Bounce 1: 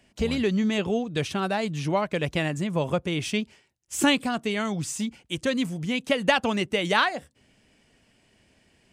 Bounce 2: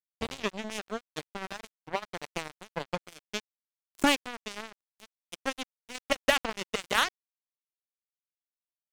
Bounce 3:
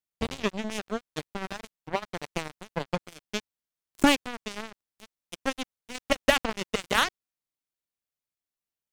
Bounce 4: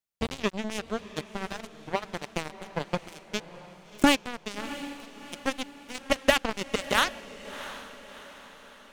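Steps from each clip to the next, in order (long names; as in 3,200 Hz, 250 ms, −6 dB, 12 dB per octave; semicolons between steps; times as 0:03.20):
harmonic generator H 4 −28 dB, 7 −16 dB, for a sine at −7.5 dBFS; dead-zone distortion −36.5 dBFS; level −2 dB
low-shelf EQ 330 Hz +6.5 dB; level +1.5 dB
feedback delay with all-pass diffusion 684 ms, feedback 48%, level −14 dB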